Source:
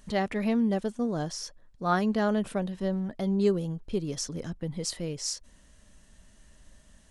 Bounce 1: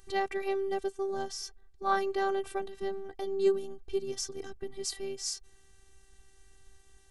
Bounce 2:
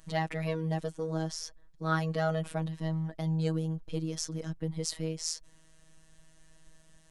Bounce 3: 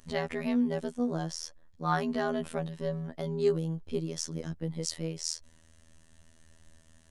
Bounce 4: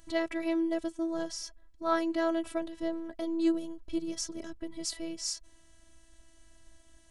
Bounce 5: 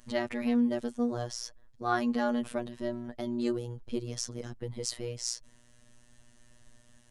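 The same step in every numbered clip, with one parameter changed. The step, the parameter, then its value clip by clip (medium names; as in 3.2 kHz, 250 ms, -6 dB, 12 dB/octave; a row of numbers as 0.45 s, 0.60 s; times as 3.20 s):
robot voice, frequency: 390 Hz, 160 Hz, 81 Hz, 330 Hz, 120 Hz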